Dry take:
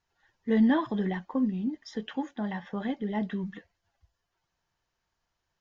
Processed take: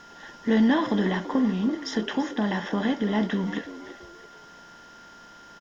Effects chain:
compressor on every frequency bin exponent 0.6
high-shelf EQ 3,500 Hz +9.5 dB
in parallel at −2 dB: downward compressor, threshold −36 dBFS, peak gain reduction 16.5 dB
on the sum: steady tone 1,400 Hz −48 dBFS
echo with shifted repeats 335 ms, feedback 36%, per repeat +78 Hz, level −14.5 dB

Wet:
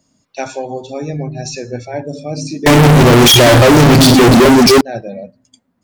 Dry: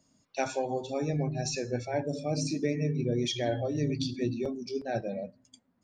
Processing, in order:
0:02.66–0:04.81: fuzz pedal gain 53 dB, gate −54 dBFS
level +8 dB

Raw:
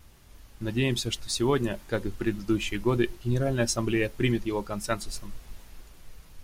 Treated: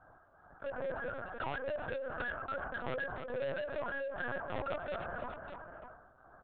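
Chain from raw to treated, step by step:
brick-wall band-pass 480–1,700 Hz
noise gate −57 dBFS, range −39 dB
0:04.03–0:04.95: comb filter 7 ms, depth 74%
dynamic equaliser 1,100 Hz, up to −6 dB, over −45 dBFS, Q 1.1
tube saturation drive 44 dB, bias 0.3
shaped tremolo triangle 2.4 Hz, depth 65%
Butterworth band-reject 1,100 Hz, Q 5.5
repeating echo 297 ms, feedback 33%, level −21 dB
linear-prediction vocoder at 8 kHz pitch kept
envelope flattener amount 70%
level +9.5 dB

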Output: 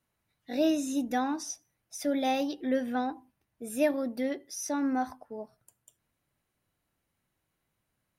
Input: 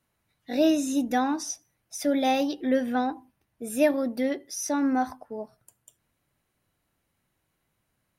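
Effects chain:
level −4.5 dB

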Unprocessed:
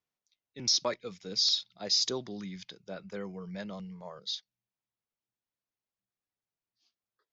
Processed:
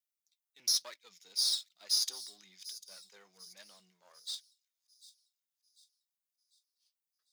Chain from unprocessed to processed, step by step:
gain on one half-wave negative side −7 dB
flanger 1.1 Hz, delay 3 ms, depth 4.7 ms, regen +67%
first difference
on a send: delay with a high-pass on its return 746 ms, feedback 42%, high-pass 5,400 Hz, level −13 dB
on the sum: level +7 dB

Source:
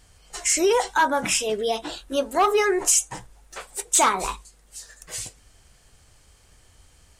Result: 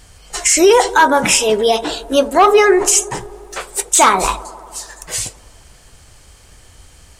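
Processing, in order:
0:02.28–0:03.02: high-shelf EQ 6,200 Hz −7 dB
delay with a band-pass on its return 88 ms, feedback 78%, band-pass 500 Hz, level −18 dB
boost into a limiter +12 dB
level −1 dB

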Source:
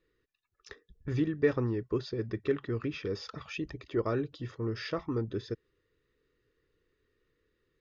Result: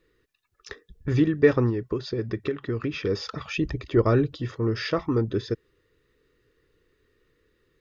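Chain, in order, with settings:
0:01.69–0:02.98: downward compressor 12 to 1, threshold −32 dBFS, peak gain reduction 10 dB
0:03.51–0:04.38: low-shelf EQ 130 Hz +9.5 dB
level +8.5 dB

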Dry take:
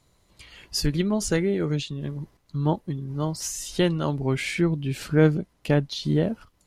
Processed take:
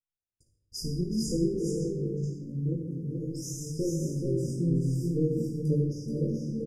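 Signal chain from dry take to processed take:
spectral magnitudes quantised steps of 15 dB
parametric band 110 Hz +8 dB 0.89 octaves
mains-hum notches 50/100/150 Hz
tuned comb filter 56 Hz, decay 0.31 s, harmonics all, mix 80%
multi-tap delay 370/430/521 ms −13.5/−4.5/−15 dB
chorus effect 0.51 Hz, delay 20 ms, depth 2.4 ms
linear-phase brick-wall band-stop 570–4,800 Hz
noise gate −57 dBFS, range −36 dB
on a send at −2.5 dB: convolution reverb RT60 1.1 s, pre-delay 3 ms

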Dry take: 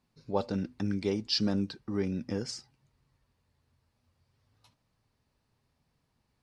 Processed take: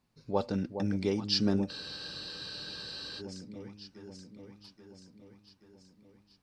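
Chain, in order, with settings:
delay that swaps between a low-pass and a high-pass 415 ms, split 890 Hz, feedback 74%, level −8 dB
frozen spectrum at 0:01.71, 1.49 s

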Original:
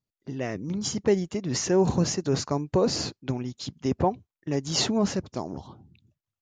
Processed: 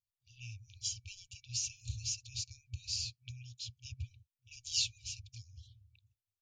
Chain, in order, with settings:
brick-wall band-stop 120–2,300 Hz
level −6 dB

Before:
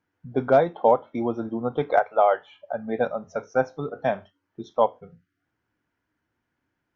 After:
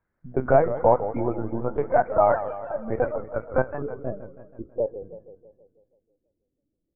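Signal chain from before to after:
Butterworth low-pass 2,100 Hz 36 dB per octave, from 0:03.80 540 Hz
linear-prediction vocoder at 8 kHz pitch kept
feedback echo with a swinging delay time 162 ms, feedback 56%, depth 203 cents, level −12 dB

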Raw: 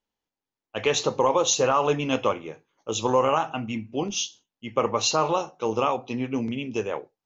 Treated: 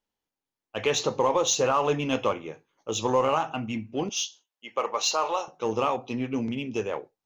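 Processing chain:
0:04.09–0:05.48: high-pass filter 550 Hz 12 dB per octave
in parallel at −10.5 dB: hard clipping −26 dBFS, distortion −5 dB
on the sum: level −3 dB

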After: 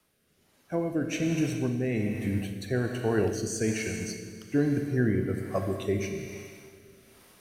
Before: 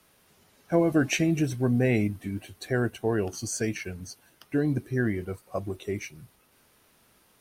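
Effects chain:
speech leveller within 5 dB 0.5 s
four-comb reverb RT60 2.3 s, combs from 28 ms, DRR 4 dB
rotating-speaker cabinet horn 1.2 Hz

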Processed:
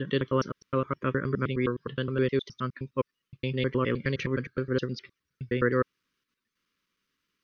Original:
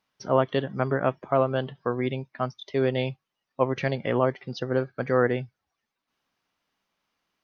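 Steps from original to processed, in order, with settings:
slices reordered back to front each 104 ms, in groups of 7
Butterworth band-reject 740 Hz, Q 1.1

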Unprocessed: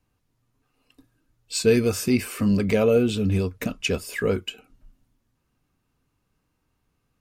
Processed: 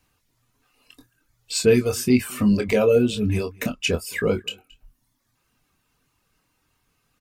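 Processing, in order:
reverb reduction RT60 0.81 s
double-tracking delay 24 ms −7.5 dB
slap from a distant wall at 38 metres, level −27 dB
one half of a high-frequency compander encoder only
level +1.5 dB

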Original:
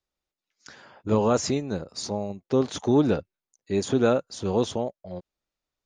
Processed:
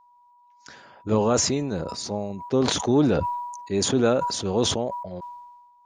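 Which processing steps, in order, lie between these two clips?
steady tone 970 Hz −54 dBFS
level that may fall only so fast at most 41 dB per second

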